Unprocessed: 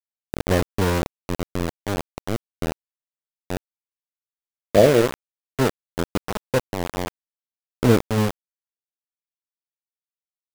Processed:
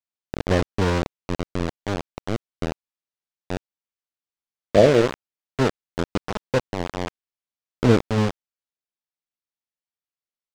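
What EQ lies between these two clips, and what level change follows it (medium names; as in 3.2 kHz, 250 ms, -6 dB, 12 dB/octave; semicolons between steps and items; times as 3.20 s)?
distance through air 130 m; treble shelf 5.9 kHz +10.5 dB; 0.0 dB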